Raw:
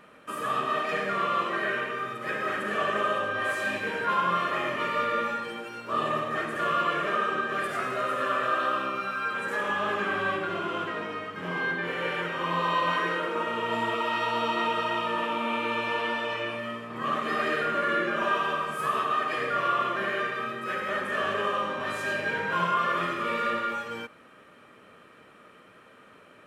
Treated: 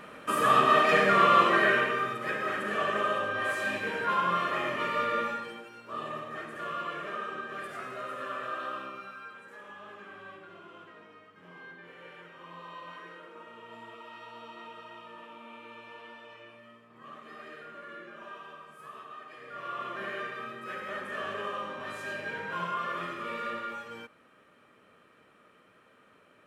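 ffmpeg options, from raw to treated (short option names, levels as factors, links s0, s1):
-af "volume=7.94,afade=t=out:st=1.47:d=0.91:silence=0.375837,afade=t=out:st=5.2:d=0.5:silence=0.421697,afade=t=out:st=8.77:d=0.67:silence=0.334965,afade=t=in:st=19.42:d=0.63:silence=0.266073"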